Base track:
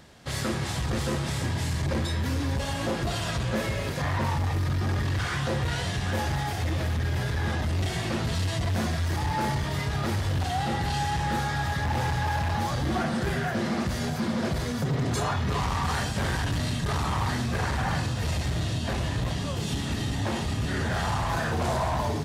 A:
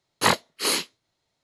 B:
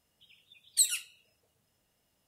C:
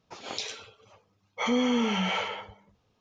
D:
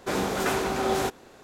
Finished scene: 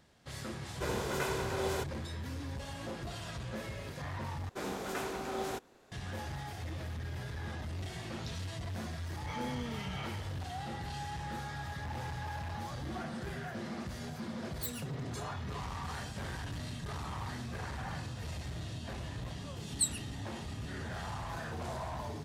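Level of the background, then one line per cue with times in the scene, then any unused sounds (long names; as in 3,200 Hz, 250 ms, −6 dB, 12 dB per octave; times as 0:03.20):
base track −13 dB
0:00.74: mix in D −9.5 dB + comb filter 2 ms, depth 45%
0:04.49: overwrite with D −11.5 dB
0:07.88: mix in C −15.5 dB
0:13.84: mix in B −12.5 dB + phase distortion by the signal itself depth 0.056 ms
0:19.02: mix in B −6 dB + every bin expanded away from the loudest bin 1.5 to 1
not used: A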